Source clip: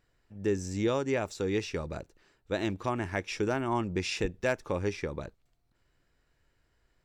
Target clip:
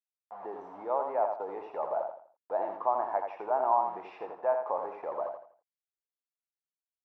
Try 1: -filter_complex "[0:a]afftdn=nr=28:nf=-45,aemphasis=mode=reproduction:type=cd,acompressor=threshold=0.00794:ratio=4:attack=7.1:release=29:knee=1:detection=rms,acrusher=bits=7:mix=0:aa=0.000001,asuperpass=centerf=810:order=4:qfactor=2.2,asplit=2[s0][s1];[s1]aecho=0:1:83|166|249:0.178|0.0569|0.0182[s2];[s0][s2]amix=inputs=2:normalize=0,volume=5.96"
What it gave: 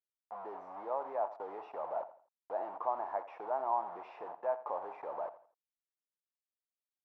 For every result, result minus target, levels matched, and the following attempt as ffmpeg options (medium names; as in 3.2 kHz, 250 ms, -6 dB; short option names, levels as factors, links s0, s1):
compression: peak gain reduction +6 dB; echo-to-direct -9 dB
-filter_complex "[0:a]afftdn=nr=28:nf=-45,aemphasis=mode=reproduction:type=cd,acompressor=threshold=0.02:ratio=4:attack=7.1:release=29:knee=1:detection=rms,acrusher=bits=7:mix=0:aa=0.000001,asuperpass=centerf=810:order=4:qfactor=2.2,asplit=2[s0][s1];[s1]aecho=0:1:83|166|249:0.178|0.0569|0.0182[s2];[s0][s2]amix=inputs=2:normalize=0,volume=5.96"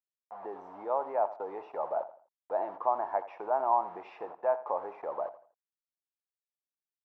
echo-to-direct -9 dB
-filter_complex "[0:a]afftdn=nr=28:nf=-45,aemphasis=mode=reproduction:type=cd,acompressor=threshold=0.02:ratio=4:attack=7.1:release=29:knee=1:detection=rms,acrusher=bits=7:mix=0:aa=0.000001,asuperpass=centerf=810:order=4:qfactor=2.2,asplit=2[s0][s1];[s1]aecho=0:1:83|166|249|332:0.501|0.16|0.0513|0.0164[s2];[s0][s2]amix=inputs=2:normalize=0,volume=5.96"